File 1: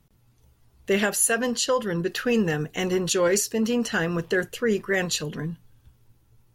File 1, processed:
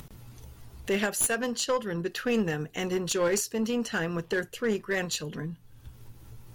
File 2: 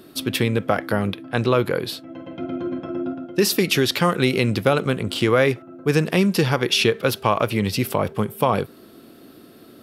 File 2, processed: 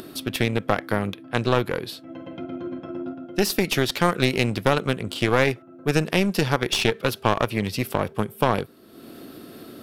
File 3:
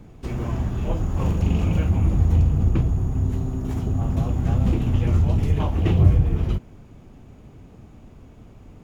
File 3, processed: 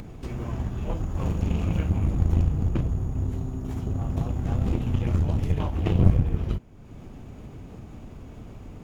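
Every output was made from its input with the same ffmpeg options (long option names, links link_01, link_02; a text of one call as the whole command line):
ffmpeg -i in.wav -af "aeval=exprs='0.794*(cos(1*acos(clip(val(0)/0.794,-1,1)))-cos(1*PI/2))+0.0562*(cos(7*acos(clip(val(0)/0.794,-1,1)))-cos(7*PI/2))':channel_layout=same,acompressor=mode=upward:threshold=-30dB:ratio=2.5,aeval=exprs='clip(val(0),-1,0.0794)':channel_layout=same" out.wav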